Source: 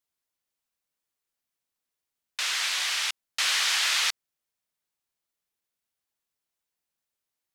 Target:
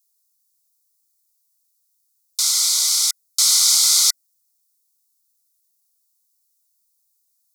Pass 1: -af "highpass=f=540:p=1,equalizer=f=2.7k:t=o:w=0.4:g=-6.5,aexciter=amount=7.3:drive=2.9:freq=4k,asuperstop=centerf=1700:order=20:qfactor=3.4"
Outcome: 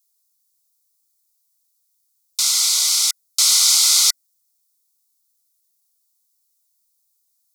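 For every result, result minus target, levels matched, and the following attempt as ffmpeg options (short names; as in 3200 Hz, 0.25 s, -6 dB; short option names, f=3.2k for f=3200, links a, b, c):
2000 Hz band +3.5 dB; 500 Hz band +3.0 dB
-af "highpass=f=540:p=1,equalizer=f=2.7k:t=o:w=0.4:g=-16,aexciter=amount=7.3:drive=2.9:freq=4k,asuperstop=centerf=1700:order=20:qfactor=3.4"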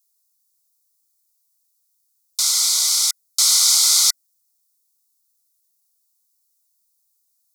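500 Hz band +3.5 dB
-af "highpass=f=1.1k:p=1,equalizer=f=2.7k:t=o:w=0.4:g=-16,aexciter=amount=7.3:drive=2.9:freq=4k,asuperstop=centerf=1700:order=20:qfactor=3.4"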